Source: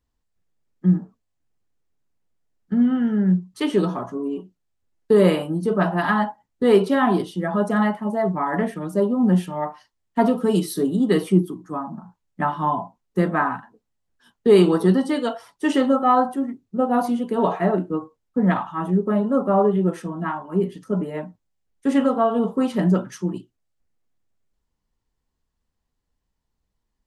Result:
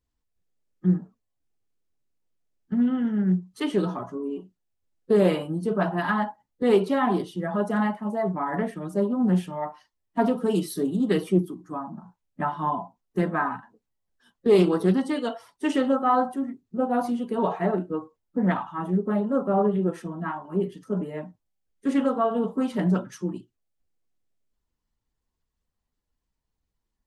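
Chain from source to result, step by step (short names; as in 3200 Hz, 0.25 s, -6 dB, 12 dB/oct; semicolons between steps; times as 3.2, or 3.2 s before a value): bin magnitudes rounded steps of 15 dB; Doppler distortion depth 0.16 ms; gain -4 dB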